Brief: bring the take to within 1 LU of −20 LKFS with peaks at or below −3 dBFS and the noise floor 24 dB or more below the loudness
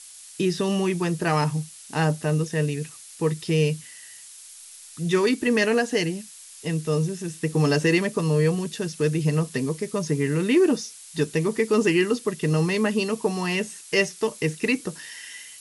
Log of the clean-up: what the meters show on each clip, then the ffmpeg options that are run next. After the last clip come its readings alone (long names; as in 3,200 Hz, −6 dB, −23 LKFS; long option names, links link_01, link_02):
background noise floor −45 dBFS; target noise floor −48 dBFS; integrated loudness −24.0 LKFS; sample peak −7.5 dBFS; target loudness −20.0 LKFS
→ -af "afftdn=noise_reduction=6:noise_floor=-45"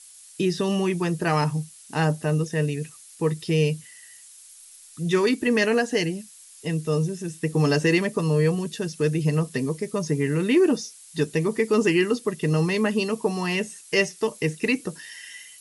background noise floor −48 dBFS; integrated loudness −24.0 LKFS; sample peak −7.5 dBFS; target loudness −20.0 LKFS
→ -af "volume=4dB"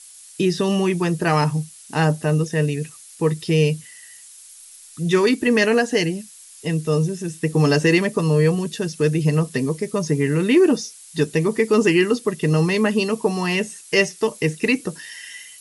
integrated loudness −20.0 LKFS; sample peak −3.5 dBFS; background noise floor −44 dBFS